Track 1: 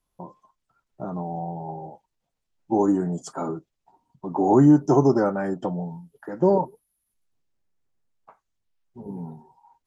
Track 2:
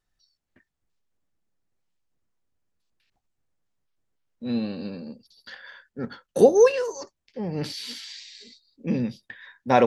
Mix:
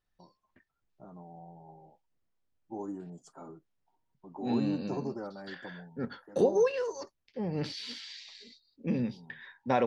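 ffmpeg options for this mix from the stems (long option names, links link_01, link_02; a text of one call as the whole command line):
ffmpeg -i stem1.wav -i stem2.wav -filter_complex "[0:a]volume=-18.5dB[link_01];[1:a]acompressor=threshold=-23dB:ratio=2,lowpass=5100,volume=-3.5dB[link_02];[link_01][link_02]amix=inputs=2:normalize=0" out.wav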